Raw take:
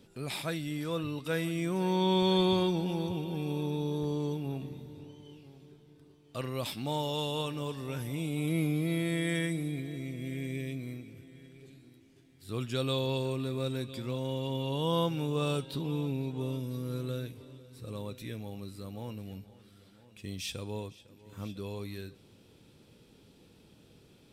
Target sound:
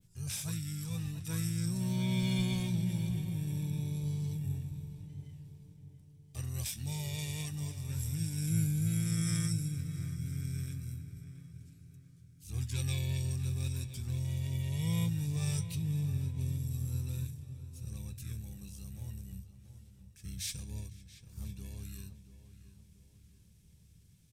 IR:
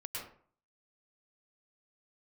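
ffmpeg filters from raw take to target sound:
-filter_complex "[0:a]adynamicequalizer=threshold=0.00251:dfrequency=6600:dqfactor=0.81:tfrequency=6600:tqfactor=0.81:attack=5:release=100:ratio=0.375:range=2:mode=boostabove:tftype=bell,asplit=2[link_01][link_02];[link_02]aeval=exprs='sgn(val(0))*max(abs(val(0))-0.00282,0)':channel_layout=same,volume=-6dB[link_03];[link_01][link_03]amix=inputs=2:normalize=0,firequalizer=gain_entry='entry(170,0);entry(240,-17);entry(520,-22);entry(780,-20);entry(8400,3)':delay=0.05:min_phase=1,asplit=2[link_04][link_05];[link_05]asetrate=29433,aresample=44100,atempo=1.49831,volume=-2dB[link_06];[link_04][link_06]amix=inputs=2:normalize=0,bandreject=frequency=50:width_type=h:width=6,bandreject=frequency=100:width_type=h:width=6,asplit=2[link_07][link_08];[link_08]adelay=681,lowpass=frequency=2400:poles=1,volume=-12dB,asplit=2[link_09][link_10];[link_10]adelay=681,lowpass=frequency=2400:poles=1,volume=0.47,asplit=2[link_11][link_12];[link_12]adelay=681,lowpass=frequency=2400:poles=1,volume=0.47,asplit=2[link_13][link_14];[link_14]adelay=681,lowpass=frequency=2400:poles=1,volume=0.47,asplit=2[link_15][link_16];[link_16]adelay=681,lowpass=frequency=2400:poles=1,volume=0.47[link_17];[link_07][link_09][link_11][link_13][link_15][link_17]amix=inputs=6:normalize=0,volume=-2.5dB"

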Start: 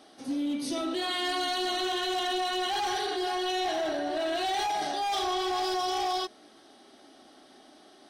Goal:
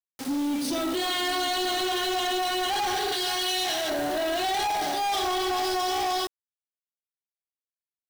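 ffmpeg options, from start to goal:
ffmpeg -i in.wav -filter_complex "[0:a]asettb=1/sr,asplit=3[link_01][link_02][link_03];[link_01]atrim=end=3.124[link_04];[link_02]atrim=start=3.12:end=3.9,asetpts=PTS-STARTPTS,afade=type=in:duration=0.004:curve=qsin,afade=type=out:start_time=0.776:duration=0.004:curve=qsin,tiltshelf=frequency=1400:gain=-8.5[link_05];[link_03]atrim=start=3.896[link_06];[link_04][link_05]acrossfade=duration=0.004:curve1=hsin:curve2=qsin[link_07];[link_07][link_06]acrossfade=duration=0.004:curve1=qsin:curve2=hsin,acrusher=bits=6:mix=0:aa=0.000001,asoftclip=type=tanh:threshold=-31.5dB,volume=7.5dB" out.wav

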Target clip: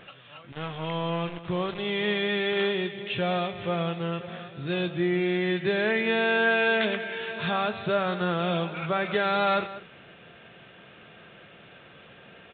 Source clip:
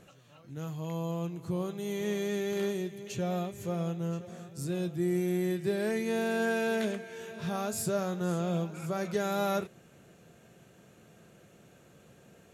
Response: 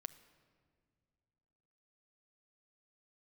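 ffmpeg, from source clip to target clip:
-filter_complex "[0:a]tiltshelf=frequency=770:gain=-7.5,asplit=2[link_01][link_02];[link_02]alimiter=level_in=1dB:limit=-24dB:level=0:latency=1:release=110,volume=-1dB,volume=-2dB[link_03];[link_01][link_03]amix=inputs=2:normalize=0,asettb=1/sr,asplit=3[link_04][link_05][link_06];[link_04]atrim=end=0.524[link_07];[link_05]atrim=start=0.52:end=1.83,asetpts=PTS-STARTPTS,afade=type=in:duration=0.004:curve=qsin,afade=type=out:start_time=1.306:duration=0.004:curve=qsin,aeval=exprs='val(0)*gte(abs(val(0)),0.0126)':channel_layout=same[link_08];[link_06]atrim=start=1.826[link_09];[link_07][link_08]acrossfade=duration=0.004:curve1=hsin:curve2=qsin[link_10];[link_10][link_09]acrossfade=duration=0.004:curve1=qsin:curve2=hsin,asplit=2[link_11][link_12];[link_12]adelay=192.4,volume=-15dB,highshelf=frequency=4000:gain=-4.33[link_13];[link_11][link_13]amix=inputs=2:normalize=0,volume=4dB" -ar 8000 -c:a pcm_alaw

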